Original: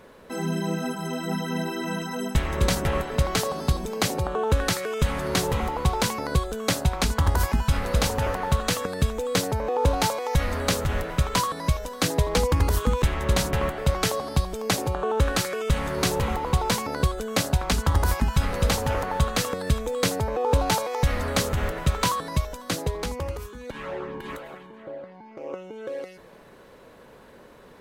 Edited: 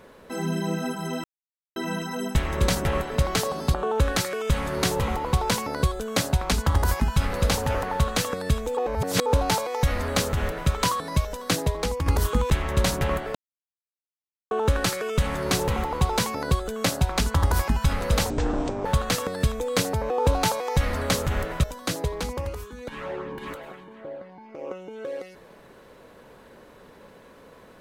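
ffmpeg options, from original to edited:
-filter_complex "[0:a]asplit=12[a][b][c][d][e][f][g][h][i][j][k][l];[a]atrim=end=1.24,asetpts=PTS-STARTPTS,afade=t=out:st=1.236:d=0.004:c=hsin[m];[b]atrim=start=1.24:end=1.76,asetpts=PTS-STARTPTS,volume=0[n];[c]atrim=start=1.76:end=3.742,asetpts=PTS-STARTPTS,afade=t=in:d=0.004:c=hsin[o];[d]atrim=start=4.258:end=9.292[p];[e]atrim=start=9.288:end=9.782,asetpts=PTS-STARTPTS,areverse[q];[f]atrim=start=9.778:end=12.58,asetpts=PTS-STARTPTS,afade=t=out:st=2.272:d=0.53:c=qua:silence=0.501187[r];[g]atrim=start=12.58:end=13.87,asetpts=PTS-STARTPTS,afade=t=in:d=0.004:c=hsin:silence=0.501187,afade=t=out:st=1.286:d=0.004:c=hsin[s];[h]atrim=start=13.87:end=15.03,asetpts=PTS-STARTPTS,volume=0[t];[i]atrim=start=15.03:end=18.824,asetpts=PTS-STARTPTS,afade=t=in:d=0.004:c=hsin[u];[j]atrim=start=18.82:end=19.12,asetpts=PTS-STARTPTS,asetrate=23814,aresample=44100[v];[k]atrim=start=19.116:end=21.902[w];[l]atrim=start=22.458[x];[m][n][o]concat=n=3:v=0:a=1[y];[y][p]acrossfade=d=0.004:c1=hsin:c2=hsin[z];[z][q]acrossfade=d=0.004:c1=hsin:c2=hsin[aa];[r][s][t][u]concat=n=4:v=0:a=1[ab];[aa][ab]acrossfade=d=0.004:c1=hsin:c2=hsin[ac];[ac][v]acrossfade=d=0.004:c1=hsin:c2=hsin[ad];[ad][w]acrossfade=d=0.004:c1=hsin:c2=hsin[ae];[ae][x]acrossfade=d=0.004:c1=hsin:c2=hsin"

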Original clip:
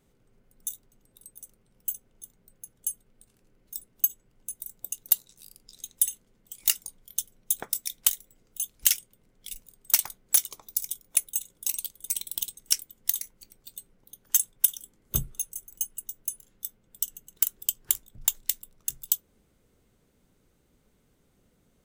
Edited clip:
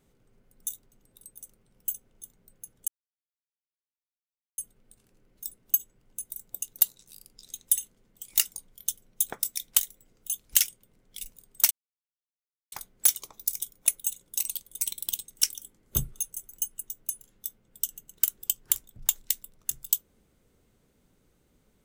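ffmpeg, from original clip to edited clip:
-filter_complex "[0:a]asplit=4[a][b][c][d];[a]atrim=end=2.88,asetpts=PTS-STARTPTS,afade=t=out:st=2.876:d=0.004:c=hsin,apad=pad_dur=1.7[e];[b]atrim=start=2.88:end=10.01,asetpts=PTS-STARTPTS,afade=t=in:d=0.004:c=hsin,afade=t=out:st=7.126:d=0.004:c=hsin,apad=pad_dur=1.01[f];[c]atrim=start=10.01:end=12.842,asetpts=PTS-STARTPTS,afade=t=in:d=0.004:c=hsin[g];[d]atrim=start=14.738[h];[e][f][g]concat=n=3:v=0:a=1[i];[i][h]acrossfade=d=0.004:c1=hsin:c2=hsin"

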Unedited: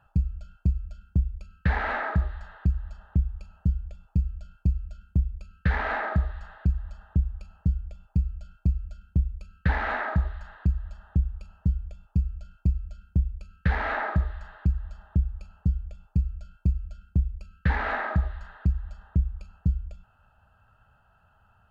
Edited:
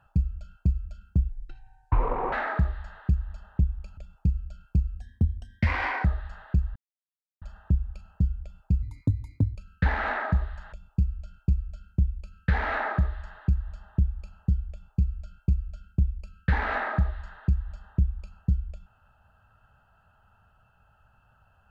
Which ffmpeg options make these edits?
-filter_complex "[0:a]asplit=10[a][b][c][d][e][f][g][h][i][j];[a]atrim=end=1.294[k];[b]atrim=start=1.29:end=1.89,asetpts=PTS-STARTPTS,asetrate=25578,aresample=44100[l];[c]atrim=start=1.886:end=3.542[m];[d]atrim=start=3.878:end=4.914[n];[e]atrim=start=4.91:end=6.16,asetpts=PTS-STARTPTS,asetrate=52920,aresample=44100[o];[f]atrim=start=6.156:end=6.87,asetpts=PTS-STARTPTS,afade=t=out:st=0.71:d=0.004:c=hsin,apad=pad_dur=0.66[p];[g]atrim=start=6.87:end=8.284,asetpts=PTS-STARTPTS,afade=t=in:d=0.004:c=hsin[q];[h]atrim=start=8.28:end=9.39,asetpts=PTS-STARTPTS,asetrate=67032,aresample=44100[r];[i]atrim=start=9.386:end=10.562[s];[j]atrim=start=11.898[t];[k][l]acrossfade=d=0.004:c1=hsin:c2=hsin[u];[u][m]acrossfade=d=0.004:c1=hsin:c2=hsin[v];[v][n]acrossfade=d=0.004:c1=hsin:c2=hsin[w];[w][o]acrossfade=d=0.004:c1=hsin:c2=hsin[x];[p][q]concat=n=2:v=0:a=1[y];[x][y]acrossfade=d=0.004:c1=hsin:c2=hsin[z];[z][r]acrossfade=d=0.004:c1=hsin:c2=hsin[aa];[aa][s]acrossfade=d=0.004:c1=hsin:c2=hsin[ab];[ab][t]acrossfade=d=0.004:c1=hsin:c2=hsin"

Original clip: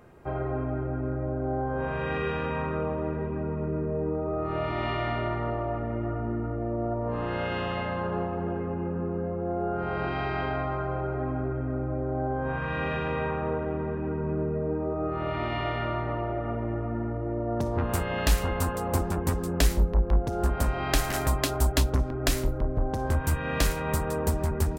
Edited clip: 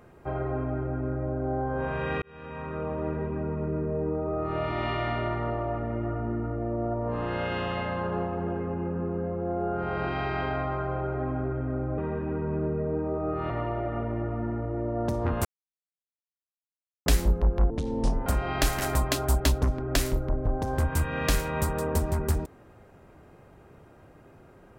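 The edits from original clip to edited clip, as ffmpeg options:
-filter_complex "[0:a]asplit=8[a][b][c][d][e][f][g][h];[a]atrim=end=2.22,asetpts=PTS-STARTPTS,afade=t=out:st=2.216:d=0.004:c=hsin[i];[b]atrim=start=2.22:end=11.982,asetpts=PTS-STARTPTS,afade=t=in:d=0.86[j];[c]atrim=start=13.738:end=15.262[k];[d]atrim=start=16.018:end=17.97,asetpts=PTS-STARTPTS,afade=t=out:st=1.948:d=0.004:c=hsin[l];[e]atrim=start=17.97:end=19.58,asetpts=PTS-STARTPTS,volume=0[m];[f]atrim=start=19.58:end=20.224,asetpts=PTS-STARTPTS,afade=t=in:d=0.004:c=hsin[n];[g]atrim=start=20.22:end=20.58,asetpts=PTS-STARTPTS,asetrate=28224,aresample=44100,atrim=end_sample=24806,asetpts=PTS-STARTPTS[o];[h]atrim=start=20.576[p];[i][j]concat=n=2:v=0:a=1[q];[q][k]acrossfade=d=0.004:c1=hsin:c2=hsin[r];[l][m][n]concat=n=3:v=0:a=1[s];[r][s]acrossfade=d=0.004:c1=hsin:c2=hsin[t];[t][o]acrossfade=d=0.004:c1=hsin:c2=hsin[u];[u][p]acrossfade=d=0.004:c1=hsin:c2=hsin"

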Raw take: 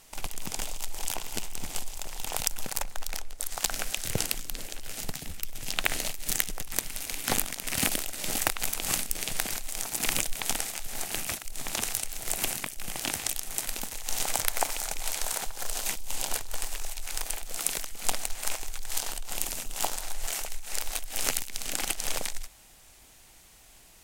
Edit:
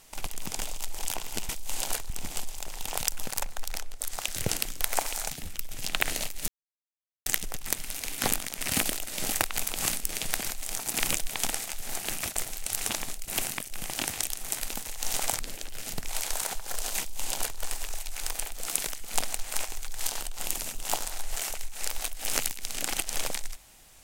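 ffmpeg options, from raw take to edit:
-filter_complex "[0:a]asplit=11[a][b][c][d][e][f][g][h][i][j][k];[a]atrim=end=1.492[l];[b]atrim=start=15.898:end=16.512[m];[c]atrim=start=1.488:end=3.632[n];[d]atrim=start=3.928:end=4.502[o];[e]atrim=start=14.448:end=14.952[p];[f]atrim=start=5.148:end=6.32,asetpts=PTS-STARTPTS,afade=t=out:st=1.168:d=0.004:c=hsin,apad=pad_dur=0.78[q];[g]atrim=start=6.32:end=11.422,asetpts=PTS-STARTPTS,afade=t=in:d=0.004:c=hsin[r];[h]atrim=start=11.418:end=12.342,asetpts=PTS-STARTPTS,areverse[s];[i]atrim=start=12.338:end=14.452[t];[j]atrim=start=4.498:end=5.152[u];[k]atrim=start=14.948[v];[l][m]acrossfade=d=0.004:c1=hsin:c2=hsin[w];[w][n]acrossfade=d=0.004:c1=hsin:c2=hsin[x];[x][o]acrossfade=d=0.004:c1=hsin:c2=hsin[y];[y][p]acrossfade=d=0.004:c1=hsin:c2=hsin[z];[q][r]concat=n=2:v=0:a=1[aa];[z][aa]acrossfade=d=0.004:c1=hsin:c2=hsin[ab];[ab][s]acrossfade=d=0.004:c1=hsin:c2=hsin[ac];[ac][t]acrossfade=d=0.004:c1=hsin:c2=hsin[ad];[ad][u]acrossfade=d=0.004:c1=hsin:c2=hsin[ae];[ae][v]acrossfade=d=0.004:c1=hsin:c2=hsin"

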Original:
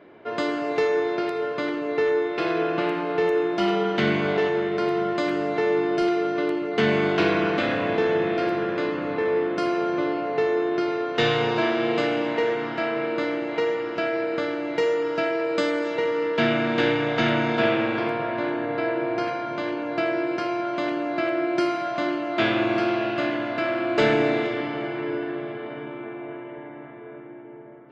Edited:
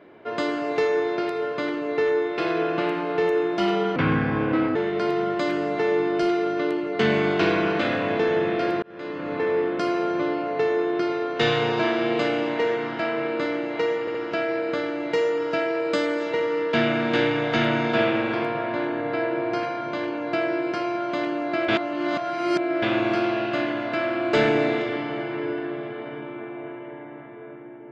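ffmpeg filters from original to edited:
-filter_complex "[0:a]asplit=8[a][b][c][d][e][f][g][h];[a]atrim=end=3.964[i];[b]atrim=start=3.96:end=4.54,asetpts=PTS-STARTPTS,asetrate=32193,aresample=44100,atrim=end_sample=35038,asetpts=PTS-STARTPTS[j];[c]atrim=start=4.536:end=8.61,asetpts=PTS-STARTPTS,afade=t=out:st=4.07:d=0.004:c=hsin[k];[d]atrim=start=8.61:end=13.862,asetpts=PTS-STARTPTS,afade=t=in:d=0.56[l];[e]atrim=start=13.788:end=13.862[m];[f]atrim=start=13.788:end=21.332[n];[g]atrim=start=21.328:end=22.472,asetpts=PTS-STARTPTS,areverse[o];[h]atrim=start=22.468[p];[i][j]acrossfade=d=0.004:c1=hsin:c2=hsin[q];[k][l]concat=n=2:v=0:a=1[r];[q][r]acrossfade=d=0.004:c1=hsin:c2=hsin[s];[s][m]acrossfade=d=0.004:c1=hsin:c2=hsin[t];[t][n]acrossfade=d=0.004:c1=hsin:c2=hsin[u];[u][o]acrossfade=d=0.004:c1=hsin:c2=hsin[v];[v][p]acrossfade=d=0.004:c1=hsin:c2=hsin"

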